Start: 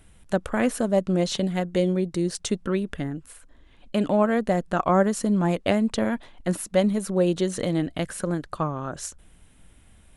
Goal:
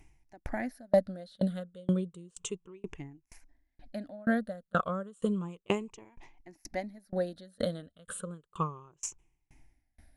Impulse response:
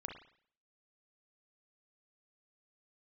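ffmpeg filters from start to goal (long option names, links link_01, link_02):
-af "afftfilt=real='re*pow(10,16/40*sin(2*PI*(0.72*log(max(b,1)*sr/1024/100)/log(2)-(-0.32)*(pts-256)/sr)))':imag='im*pow(10,16/40*sin(2*PI*(0.72*log(max(b,1)*sr/1024/100)/log(2)-(-0.32)*(pts-256)/sr)))':win_size=1024:overlap=0.75,aeval=exprs='val(0)*pow(10,-33*if(lt(mod(2.1*n/s,1),2*abs(2.1)/1000),1-mod(2.1*n/s,1)/(2*abs(2.1)/1000),(mod(2.1*n/s,1)-2*abs(2.1)/1000)/(1-2*abs(2.1)/1000))/20)':channel_layout=same,volume=-5dB"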